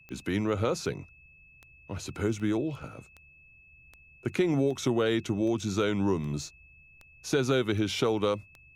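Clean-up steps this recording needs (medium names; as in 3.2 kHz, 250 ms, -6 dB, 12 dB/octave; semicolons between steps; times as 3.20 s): de-click; band-stop 2.6 kHz, Q 30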